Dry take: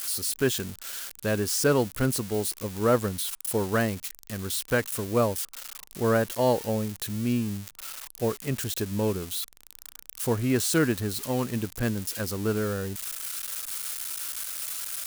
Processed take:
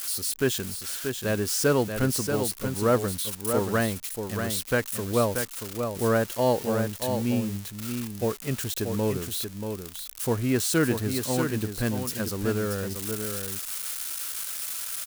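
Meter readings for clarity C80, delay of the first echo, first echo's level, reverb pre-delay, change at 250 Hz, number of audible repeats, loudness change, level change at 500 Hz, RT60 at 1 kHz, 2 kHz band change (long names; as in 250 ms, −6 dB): no reverb audible, 633 ms, −6.5 dB, no reverb audible, +1.0 dB, 1, +0.5 dB, +1.0 dB, no reverb audible, +1.0 dB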